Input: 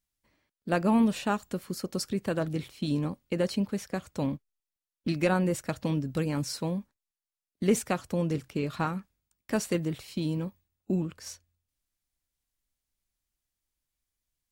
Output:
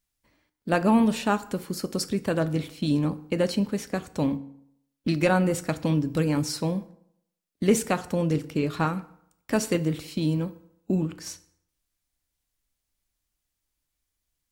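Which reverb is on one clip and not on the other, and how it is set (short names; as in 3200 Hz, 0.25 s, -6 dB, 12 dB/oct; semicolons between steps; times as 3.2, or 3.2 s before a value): FDN reverb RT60 0.72 s, low-frequency decay 0.95×, high-frequency decay 0.7×, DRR 12 dB; gain +4 dB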